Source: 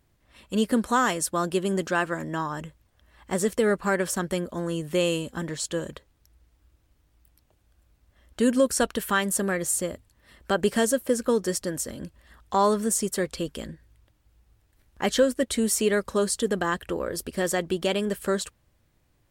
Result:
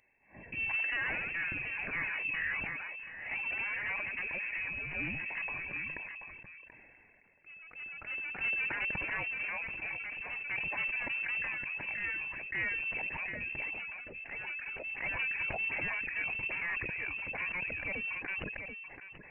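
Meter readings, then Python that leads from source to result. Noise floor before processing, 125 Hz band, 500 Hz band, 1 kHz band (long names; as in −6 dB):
−67 dBFS, −15.5 dB, −25.0 dB, −16.5 dB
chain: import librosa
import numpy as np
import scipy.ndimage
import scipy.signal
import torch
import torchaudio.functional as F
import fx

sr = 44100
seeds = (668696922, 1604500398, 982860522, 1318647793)

p1 = fx.dereverb_blind(x, sr, rt60_s=0.61)
p2 = scipy.signal.sosfilt(scipy.signal.butter(16, 220.0, 'highpass', fs=sr, output='sos'), p1)
p3 = fx.low_shelf(p2, sr, hz=450.0, db=5.0)
p4 = fx.over_compress(p3, sr, threshold_db=-33.0, ratio=-1.0)
p5 = p3 + (p4 * librosa.db_to_amplitude(-2.0))
p6 = fx.fixed_phaser(p5, sr, hz=1600.0, stages=6)
p7 = 10.0 ** (-26.5 / 20.0) * np.tanh(p6 / 10.0 ** (-26.5 / 20.0))
p8 = p7 + fx.echo_single(p7, sr, ms=733, db=-12.0, dry=0)
p9 = fx.echo_pitch(p8, sr, ms=131, semitones=1, count=3, db_per_echo=-6.0)
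p10 = fx.freq_invert(p9, sr, carrier_hz=2900)
p11 = fx.sustainer(p10, sr, db_per_s=21.0)
y = p11 * librosa.db_to_amplitude(-5.0)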